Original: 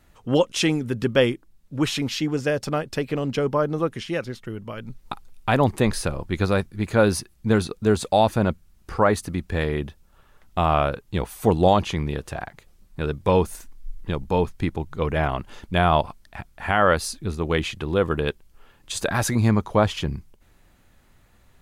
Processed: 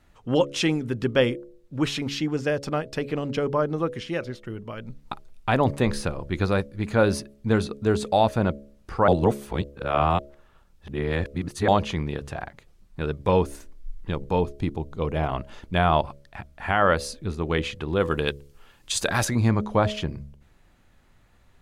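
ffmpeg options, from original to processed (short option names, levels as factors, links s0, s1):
-filter_complex "[0:a]asettb=1/sr,asplit=3[s0][s1][s2];[s0]atrim=end=14.404[s3];[s1]atrim=start=14.4:end=15.29,asetpts=PTS-STARTPTS,afade=t=in:d=0.004:c=qsin,afade=t=out:st=0.886:d=0.004:c=qsin,equalizer=f=1700:w=1.4:g=-7.5[s4];[s2]atrim=start=15.286[s5];[s3][s4]acrossfade=d=0.004:c1=hsin:c2=qsin[s6];[s6][s5]acrossfade=d=0.004:c1=qsin:c2=hsin,asettb=1/sr,asplit=3[s7][s8][s9];[s7]atrim=end=18.004[s10];[s8]atrim=start=18:end=19.25,asetpts=PTS-STARTPTS,afade=t=in:d=0.004:c=qsin,afade=t=out:st=1.246:d=0.004:c=qsin,highshelf=f=2900:g=10[s11];[s9]atrim=start=19.246[s12];[s10][s11]acrossfade=d=0.004:c1=hsin:c2=qsin[s13];[s13][s12]acrossfade=d=0.004:c1=qsin:c2=hsin,asplit=3[s14][s15][s16];[s14]atrim=end=9.082[s17];[s15]atrim=start=9.078:end=11.682,asetpts=PTS-STARTPTS,areverse[s18];[s16]atrim=start=11.678[s19];[s17][s18]acrossfade=d=0.004:c1=hsin:c2=hsin[s20];[s20][s19]acrossfade=d=0.004:c1=hsin:c2=hsin,highshelf=f=9400:g=-10.5,bandreject=f=70.55:t=h:w=4,bandreject=f=141.1:t=h:w=4,bandreject=f=211.65:t=h:w=4,bandreject=f=282.2:t=h:w=4,bandreject=f=352.75:t=h:w=4,bandreject=f=423.3:t=h:w=4,bandreject=f=493.85:t=h:w=4,bandreject=f=564.4:t=h:w=4,bandreject=f=634.95:t=h:w=4,volume=0.841"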